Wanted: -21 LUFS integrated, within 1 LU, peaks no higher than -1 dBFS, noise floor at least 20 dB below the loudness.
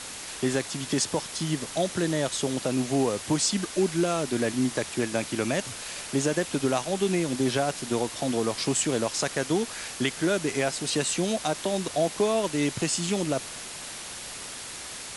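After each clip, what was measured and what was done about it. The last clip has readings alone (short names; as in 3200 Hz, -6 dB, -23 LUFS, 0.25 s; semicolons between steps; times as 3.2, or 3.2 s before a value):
noise floor -39 dBFS; noise floor target -48 dBFS; loudness -27.5 LUFS; peak -12.5 dBFS; loudness target -21.0 LUFS
-> noise print and reduce 9 dB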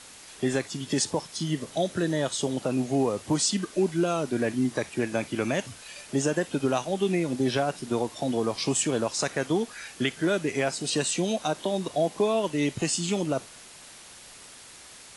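noise floor -48 dBFS; loudness -27.5 LUFS; peak -12.5 dBFS; loudness target -21.0 LUFS
-> gain +6.5 dB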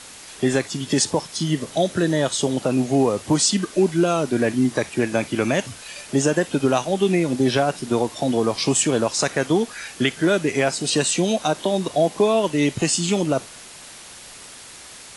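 loudness -21.0 LUFS; peak -6.0 dBFS; noise floor -41 dBFS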